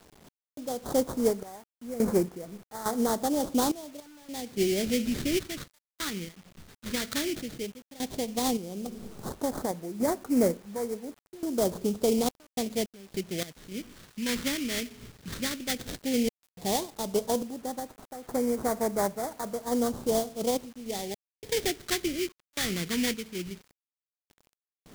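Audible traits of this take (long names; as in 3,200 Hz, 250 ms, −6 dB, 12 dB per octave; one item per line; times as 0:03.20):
aliases and images of a low sample rate 2,700 Hz, jitter 20%
sample-and-hold tremolo, depth 100%
phaser sweep stages 2, 0.12 Hz, lowest notch 720–2,800 Hz
a quantiser's noise floor 10 bits, dither none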